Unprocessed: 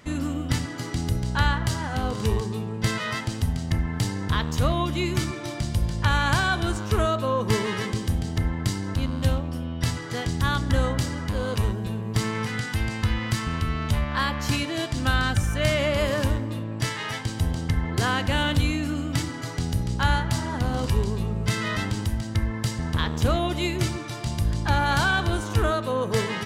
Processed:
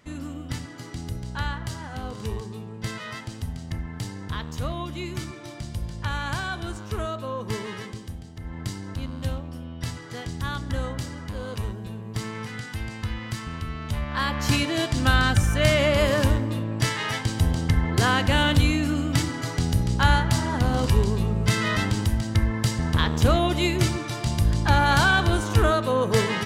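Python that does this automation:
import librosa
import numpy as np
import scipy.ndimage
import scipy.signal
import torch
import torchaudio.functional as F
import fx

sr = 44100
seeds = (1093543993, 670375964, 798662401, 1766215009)

y = fx.gain(x, sr, db=fx.line((7.75, -7.0), (8.37, -15.0), (8.57, -6.0), (13.83, -6.0), (14.52, 3.0)))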